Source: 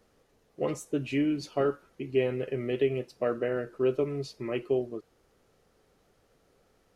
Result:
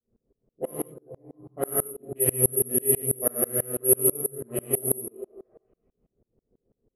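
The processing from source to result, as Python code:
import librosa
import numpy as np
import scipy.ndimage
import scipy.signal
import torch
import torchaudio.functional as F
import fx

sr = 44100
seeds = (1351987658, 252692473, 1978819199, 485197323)

y = fx.wiener(x, sr, points=25)
y = fx.tone_stack(y, sr, knobs='5-5-5', at=(0.85, 1.38), fade=0.02)
y = fx.env_lowpass(y, sr, base_hz=440.0, full_db=-23.5)
y = fx.dmg_crackle(y, sr, seeds[0], per_s=80.0, level_db=-58.0)
y = fx.high_shelf(y, sr, hz=3800.0, db=-10.0)
y = fx.echo_stepped(y, sr, ms=225, hz=340.0, octaves=0.7, feedback_pct=70, wet_db=-11)
y = fx.rev_gated(y, sr, seeds[1], gate_ms=220, shape='flat', drr_db=-6.5)
y = (np.kron(y[::4], np.eye(4)[0]) * 4)[:len(y)]
y = fx.env_lowpass(y, sr, base_hz=710.0, full_db=-12.0)
y = fx.tremolo_decay(y, sr, direction='swelling', hz=6.1, depth_db=31)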